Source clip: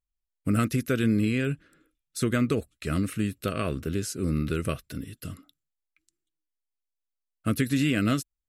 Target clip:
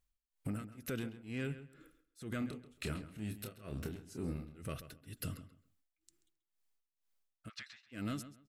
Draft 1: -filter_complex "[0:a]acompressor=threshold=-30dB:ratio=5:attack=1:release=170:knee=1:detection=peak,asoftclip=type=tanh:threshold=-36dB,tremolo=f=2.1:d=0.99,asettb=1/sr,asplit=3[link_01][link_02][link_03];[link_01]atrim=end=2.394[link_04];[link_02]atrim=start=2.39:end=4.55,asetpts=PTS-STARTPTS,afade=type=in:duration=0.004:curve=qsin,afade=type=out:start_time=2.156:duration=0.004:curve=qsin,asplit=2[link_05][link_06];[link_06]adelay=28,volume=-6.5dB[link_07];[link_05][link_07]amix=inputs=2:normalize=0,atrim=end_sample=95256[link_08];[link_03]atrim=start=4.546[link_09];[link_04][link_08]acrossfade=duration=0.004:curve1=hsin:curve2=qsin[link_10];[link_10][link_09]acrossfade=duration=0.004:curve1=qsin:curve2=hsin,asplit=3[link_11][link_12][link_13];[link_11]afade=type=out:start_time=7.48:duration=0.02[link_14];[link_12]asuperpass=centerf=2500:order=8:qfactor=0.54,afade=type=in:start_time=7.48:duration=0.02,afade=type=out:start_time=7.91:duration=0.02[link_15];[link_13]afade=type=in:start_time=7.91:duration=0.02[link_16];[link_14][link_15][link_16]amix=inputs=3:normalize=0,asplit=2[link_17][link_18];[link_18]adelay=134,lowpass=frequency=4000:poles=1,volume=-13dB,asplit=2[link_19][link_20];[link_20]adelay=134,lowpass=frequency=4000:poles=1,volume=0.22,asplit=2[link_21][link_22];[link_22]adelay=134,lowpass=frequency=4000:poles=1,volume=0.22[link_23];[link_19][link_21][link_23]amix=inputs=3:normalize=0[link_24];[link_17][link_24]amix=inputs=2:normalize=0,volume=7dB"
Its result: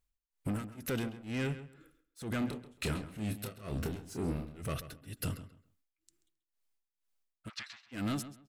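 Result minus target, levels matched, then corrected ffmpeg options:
downward compressor: peak gain reduction −9 dB
-filter_complex "[0:a]acompressor=threshold=-41dB:ratio=5:attack=1:release=170:knee=1:detection=peak,asoftclip=type=tanh:threshold=-36dB,tremolo=f=2.1:d=0.99,asettb=1/sr,asplit=3[link_01][link_02][link_03];[link_01]atrim=end=2.394[link_04];[link_02]atrim=start=2.39:end=4.55,asetpts=PTS-STARTPTS,afade=type=in:duration=0.004:curve=qsin,afade=type=out:start_time=2.156:duration=0.004:curve=qsin,asplit=2[link_05][link_06];[link_06]adelay=28,volume=-6.5dB[link_07];[link_05][link_07]amix=inputs=2:normalize=0,atrim=end_sample=95256[link_08];[link_03]atrim=start=4.546[link_09];[link_04][link_08]acrossfade=duration=0.004:curve1=hsin:curve2=qsin[link_10];[link_10][link_09]acrossfade=duration=0.004:curve1=qsin:curve2=hsin,asplit=3[link_11][link_12][link_13];[link_11]afade=type=out:start_time=7.48:duration=0.02[link_14];[link_12]asuperpass=centerf=2500:order=8:qfactor=0.54,afade=type=in:start_time=7.48:duration=0.02,afade=type=out:start_time=7.91:duration=0.02[link_15];[link_13]afade=type=in:start_time=7.91:duration=0.02[link_16];[link_14][link_15][link_16]amix=inputs=3:normalize=0,asplit=2[link_17][link_18];[link_18]adelay=134,lowpass=frequency=4000:poles=1,volume=-13dB,asplit=2[link_19][link_20];[link_20]adelay=134,lowpass=frequency=4000:poles=1,volume=0.22,asplit=2[link_21][link_22];[link_22]adelay=134,lowpass=frequency=4000:poles=1,volume=0.22[link_23];[link_19][link_21][link_23]amix=inputs=3:normalize=0[link_24];[link_17][link_24]amix=inputs=2:normalize=0,volume=7dB"

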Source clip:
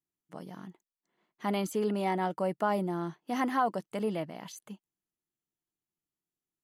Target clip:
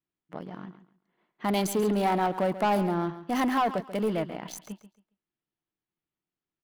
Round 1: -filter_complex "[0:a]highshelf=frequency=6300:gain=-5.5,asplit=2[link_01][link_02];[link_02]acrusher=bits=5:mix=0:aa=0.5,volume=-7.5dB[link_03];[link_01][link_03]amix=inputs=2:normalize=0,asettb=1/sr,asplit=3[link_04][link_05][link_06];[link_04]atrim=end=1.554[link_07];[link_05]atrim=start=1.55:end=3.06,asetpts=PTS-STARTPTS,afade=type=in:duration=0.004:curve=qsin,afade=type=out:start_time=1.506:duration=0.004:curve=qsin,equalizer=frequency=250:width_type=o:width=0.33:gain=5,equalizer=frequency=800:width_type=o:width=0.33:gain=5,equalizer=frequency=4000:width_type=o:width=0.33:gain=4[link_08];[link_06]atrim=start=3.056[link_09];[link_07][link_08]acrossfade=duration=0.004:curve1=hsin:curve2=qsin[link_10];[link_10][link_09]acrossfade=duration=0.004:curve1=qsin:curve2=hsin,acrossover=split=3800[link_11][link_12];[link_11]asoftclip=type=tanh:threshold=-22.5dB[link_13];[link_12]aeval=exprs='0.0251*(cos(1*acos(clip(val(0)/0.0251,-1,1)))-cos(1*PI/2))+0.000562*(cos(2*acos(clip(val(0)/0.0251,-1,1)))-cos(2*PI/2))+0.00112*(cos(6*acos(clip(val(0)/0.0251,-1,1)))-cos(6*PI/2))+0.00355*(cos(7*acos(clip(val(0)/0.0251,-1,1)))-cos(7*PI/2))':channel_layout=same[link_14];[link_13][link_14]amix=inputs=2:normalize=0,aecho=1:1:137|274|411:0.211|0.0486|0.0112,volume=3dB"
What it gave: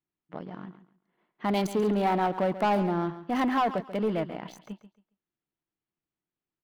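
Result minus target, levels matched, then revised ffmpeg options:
8,000 Hz band −9.0 dB
-filter_complex "[0:a]highshelf=frequency=6300:gain=4.5,asplit=2[link_01][link_02];[link_02]acrusher=bits=5:mix=0:aa=0.5,volume=-7.5dB[link_03];[link_01][link_03]amix=inputs=2:normalize=0,asettb=1/sr,asplit=3[link_04][link_05][link_06];[link_04]atrim=end=1.554[link_07];[link_05]atrim=start=1.55:end=3.06,asetpts=PTS-STARTPTS,afade=type=in:duration=0.004:curve=qsin,afade=type=out:start_time=1.506:duration=0.004:curve=qsin,equalizer=frequency=250:width_type=o:width=0.33:gain=5,equalizer=frequency=800:width_type=o:width=0.33:gain=5,equalizer=frequency=4000:width_type=o:width=0.33:gain=4[link_08];[link_06]atrim=start=3.056[link_09];[link_07][link_08]acrossfade=duration=0.004:curve1=hsin:curve2=qsin[link_10];[link_10][link_09]acrossfade=duration=0.004:curve1=qsin:curve2=hsin,acrossover=split=3800[link_11][link_12];[link_11]asoftclip=type=tanh:threshold=-22.5dB[link_13];[link_12]aeval=exprs='0.0251*(cos(1*acos(clip(val(0)/0.0251,-1,1)))-cos(1*PI/2))+0.000562*(cos(2*acos(clip(val(0)/0.0251,-1,1)))-cos(2*PI/2))+0.00112*(cos(6*acos(clip(val(0)/0.0251,-1,1)))-cos(6*PI/2))+0.00355*(cos(7*acos(clip(val(0)/0.0251,-1,1)))-cos(7*PI/2))':channel_layout=same[link_14];[link_13][link_14]amix=inputs=2:normalize=0,aecho=1:1:137|274|411:0.211|0.0486|0.0112,volume=3dB"

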